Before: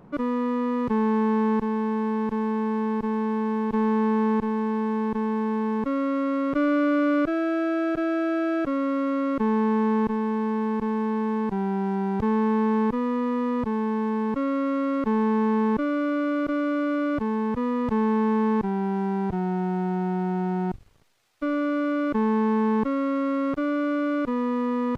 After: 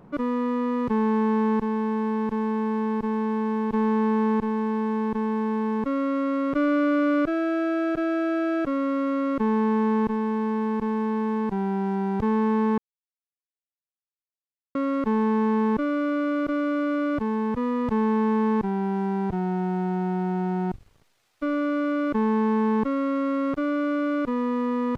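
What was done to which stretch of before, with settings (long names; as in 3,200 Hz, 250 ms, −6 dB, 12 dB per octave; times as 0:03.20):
0:12.78–0:14.75: silence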